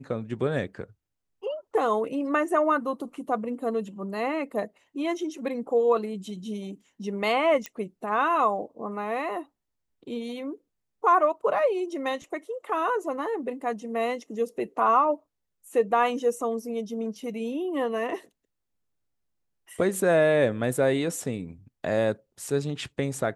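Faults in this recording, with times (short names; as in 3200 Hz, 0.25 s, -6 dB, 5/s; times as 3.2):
7.66 pop -17 dBFS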